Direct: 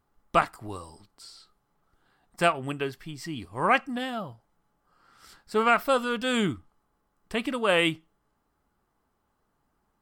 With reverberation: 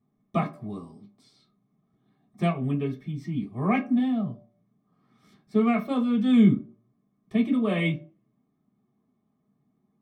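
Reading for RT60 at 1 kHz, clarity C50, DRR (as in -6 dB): 0.45 s, 13.5 dB, -3.5 dB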